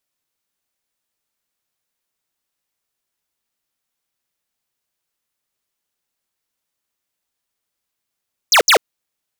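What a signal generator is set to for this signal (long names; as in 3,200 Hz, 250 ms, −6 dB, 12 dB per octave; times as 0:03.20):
repeated falling chirps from 7,100 Hz, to 370 Hz, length 0.09 s square, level −10 dB, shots 2, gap 0.07 s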